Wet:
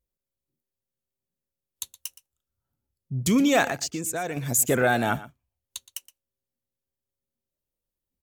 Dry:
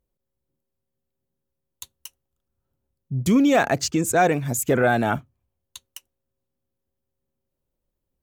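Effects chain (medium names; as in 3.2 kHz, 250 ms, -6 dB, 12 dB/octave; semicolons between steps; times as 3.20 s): vibrato 0.87 Hz 17 cents; treble shelf 2.5 kHz +9 dB; 3.69–4.37 s: compression 6:1, threshold -24 dBFS, peak gain reduction 11 dB; on a send: delay 119 ms -17 dB; on the sum: spectral noise reduction 7 dB; trim -3.5 dB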